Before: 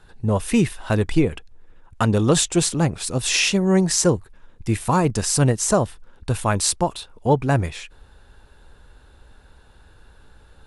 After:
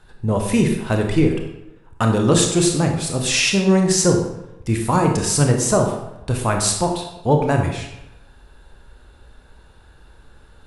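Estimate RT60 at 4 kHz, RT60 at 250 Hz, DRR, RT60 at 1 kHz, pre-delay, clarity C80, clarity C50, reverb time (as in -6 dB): 0.65 s, 0.95 s, 2.5 dB, 0.90 s, 24 ms, 7.5 dB, 5.0 dB, 0.90 s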